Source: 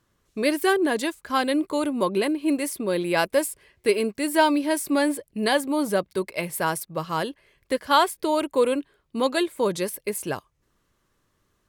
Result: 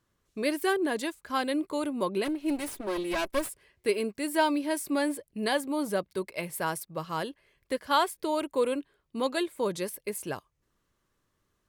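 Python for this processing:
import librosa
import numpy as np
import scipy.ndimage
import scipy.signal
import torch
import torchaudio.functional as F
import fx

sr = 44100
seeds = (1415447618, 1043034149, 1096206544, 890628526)

y = fx.lower_of_two(x, sr, delay_ms=3.1, at=(2.24, 3.48), fade=0.02)
y = y * 10.0 ** (-6.0 / 20.0)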